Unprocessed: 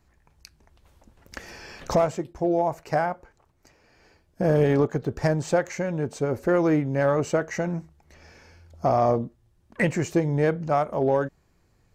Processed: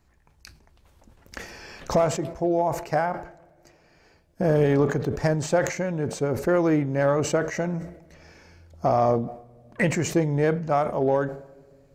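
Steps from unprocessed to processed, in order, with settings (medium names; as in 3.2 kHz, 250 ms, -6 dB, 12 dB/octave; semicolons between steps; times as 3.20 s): on a send at -22.5 dB: reverberation RT60 2.2 s, pre-delay 4 ms; on the sum: decay stretcher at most 97 dB/s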